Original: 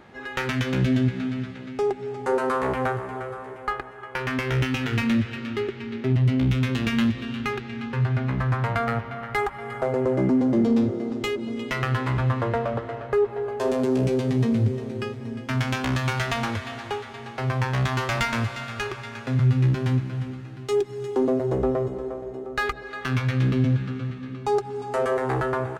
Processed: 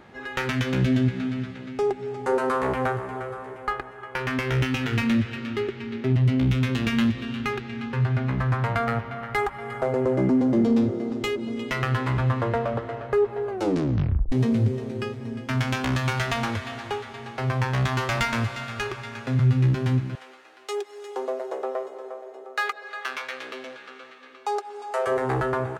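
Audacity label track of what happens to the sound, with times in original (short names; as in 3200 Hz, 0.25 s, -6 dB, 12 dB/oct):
13.490000	13.490000	tape stop 0.83 s
20.150000	25.070000	HPF 500 Hz 24 dB/oct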